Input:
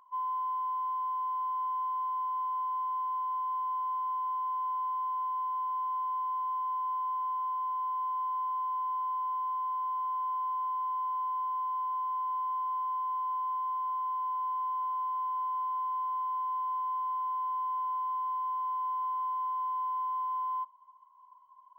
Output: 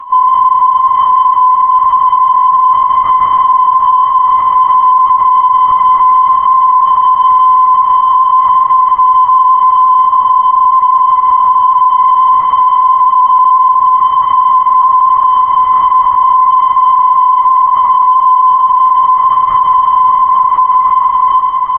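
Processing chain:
0:16.99–0:17.67: Butterworth high-pass 320 Hz 48 dB per octave
feedback echo with a high-pass in the loop 778 ms, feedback 60%, high-pass 460 Hz, level −6.5 dB
downward compressor 12 to 1, threshold −37 dBFS, peak gain reduction 10.5 dB
0:06.62–0:07.18: parametric band 1,300 Hz +2.5 dB 1.7 octaves
linear-prediction vocoder at 8 kHz whisper
0:09.86–0:10.61: high-shelf EQ 2,300 Hz −6 dB
repeating echo 176 ms, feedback 54%, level −5 dB
boost into a limiter +34.5 dB
level −1 dB
Ogg Vorbis 96 kbit/s 32,000 Hz

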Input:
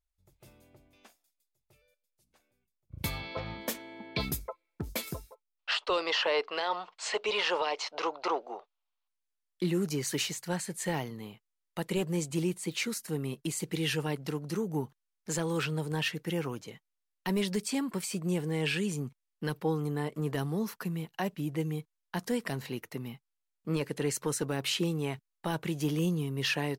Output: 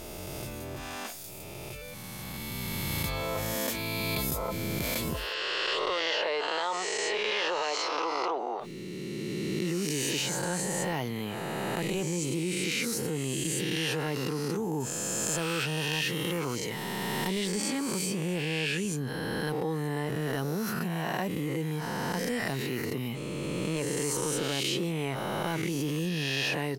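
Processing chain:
peak hold with a rise ahead of every peak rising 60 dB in 1.47 s
0:14.80–0:17.28: high-shelf EQ 5,400 Hz +6.5 dB
envelope flattener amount 70%
level −5.5 dB

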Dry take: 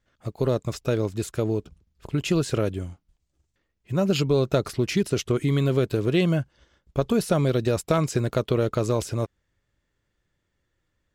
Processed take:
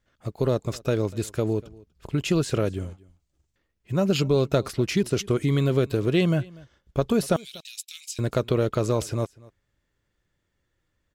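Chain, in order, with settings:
0:07.36–0:08.19: Butterworth high-pass 2,700 Hz 36 dB per octave
single-tap delay 242 ms −23 dB

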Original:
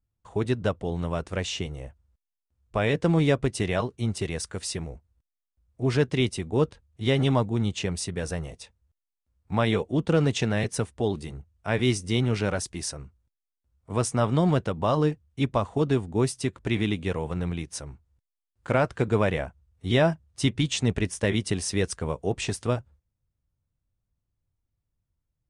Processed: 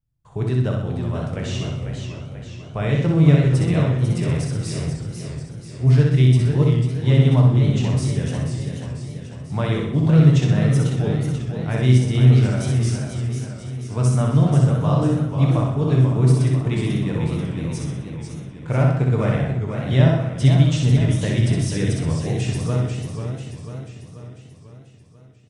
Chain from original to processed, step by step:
parametric band 130 Hz +13 dB 0.84 octaves
repeating echo 63 ms, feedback 49%, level −3.5 dB
on a send at −4 dB: convolution reverb RT60 0.65 s, pre-delay 7 ms
on the sum: feedback echo with a swinging delay time 491 ms, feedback 55%, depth 140 cents, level −7 dB
level −4.5 dB

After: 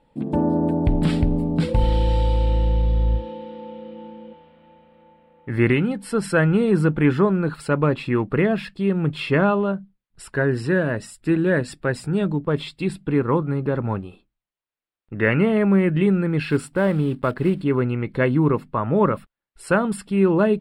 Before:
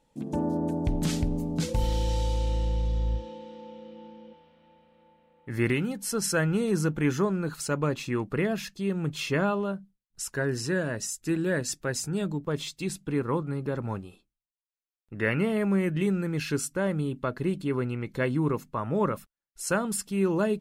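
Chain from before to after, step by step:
0:16.43–0:17.66: one scale factor per block 5 bits
moving average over 7 samples
level +8 dB

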